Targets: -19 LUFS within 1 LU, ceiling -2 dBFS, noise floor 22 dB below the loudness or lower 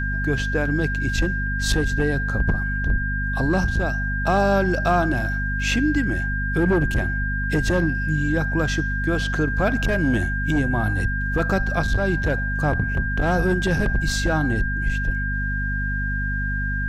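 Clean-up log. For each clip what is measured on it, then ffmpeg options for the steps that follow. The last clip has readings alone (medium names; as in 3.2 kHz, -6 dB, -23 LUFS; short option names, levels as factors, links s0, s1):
hum 50 Hz; highest harmonic 250 Hz; hum level -23 dBFS; steady tone 1.6 kHz; tone level -26 dBFS; loudness -22.5 LUFS; peak level -8.5 dBFS; loudness target -19.0 LUFS
-> -af "bandreject=f=50:t=h:w=4,bandreject=f=100:t=h:w=4,bandreject=f=150:t=h:w=4,bandreject=f=200:t=h:w=4,bandreject=f=250:t=h:w=4"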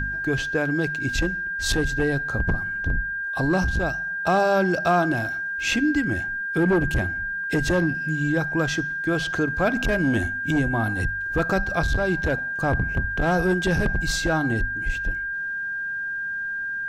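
hum not found; steady tone 1.6 kHz; tone level -26 dBFS
-> -af "bandreject=f=1600:w=30"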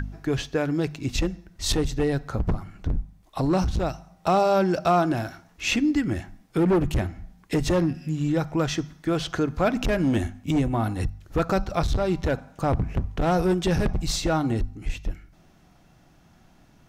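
steady tone not found; loudness -25.5 LUFS; peak level -11.5 dBFS; loudness target -19.0 LUFS
-> -af "volume=2.11"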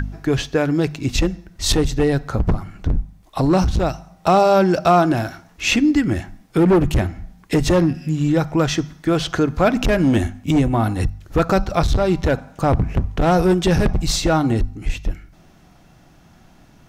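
loudness -19.0 LUFS; peak level -5.0 dBFS; noise floor -50 dBFS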